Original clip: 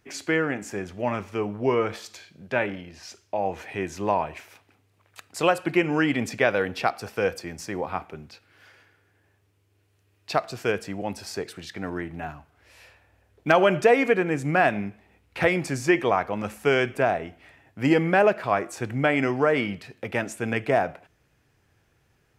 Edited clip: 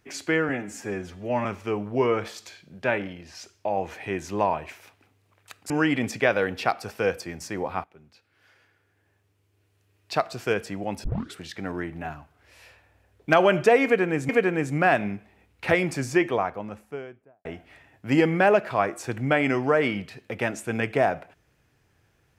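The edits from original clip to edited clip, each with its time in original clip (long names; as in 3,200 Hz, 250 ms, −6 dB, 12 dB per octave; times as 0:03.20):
0:00.49–0:01.13: time-stretch 1.5×
0:05.38–0:05.88: remove
0:08.02–0:10.71: fade in equal-power, from −16.5 dB
0:11.22: tape start 0.31 s
0:14.02–0:14.47: repeat, 2 plays
0:15.62–0:17.18: fade out and dull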